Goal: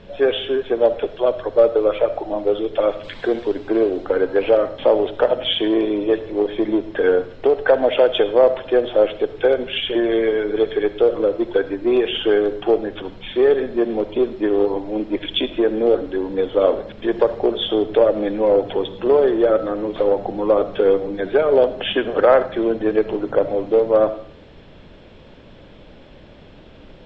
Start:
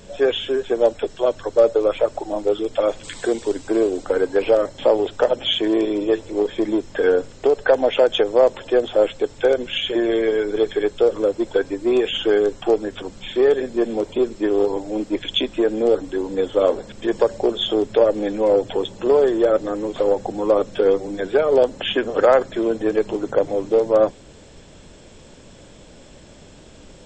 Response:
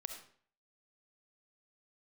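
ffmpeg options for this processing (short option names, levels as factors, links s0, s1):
-filter_complex "[0:a]lowpass=f=3700:w=0.5412,lowpass=f=3700:w=1.3066,asplit=2[s0][s1];[1:a]atrim=start_sample=2205[s2];[s1][s2]afir=irnorm=-1:irlink=0,volume=1.12[s3];[s0][s3]amix=inputs=2:normalize=0,volume=0.631"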